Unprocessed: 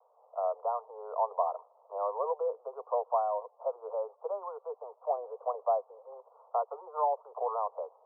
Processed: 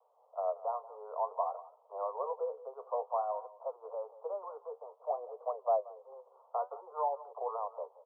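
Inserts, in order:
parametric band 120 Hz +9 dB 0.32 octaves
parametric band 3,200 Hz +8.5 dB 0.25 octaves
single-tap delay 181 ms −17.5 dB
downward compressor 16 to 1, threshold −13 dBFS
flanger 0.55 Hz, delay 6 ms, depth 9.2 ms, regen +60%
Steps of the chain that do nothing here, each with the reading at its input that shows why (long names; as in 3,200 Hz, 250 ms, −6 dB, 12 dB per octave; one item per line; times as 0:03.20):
parametric band 120 Hz: nothing at its input below 380 Hz
parametric band 3,200 Hz: nothing at its input above 1,400 Hz
downward compressor, threshold −13 dBFS: peak of its input −16.5 dBFS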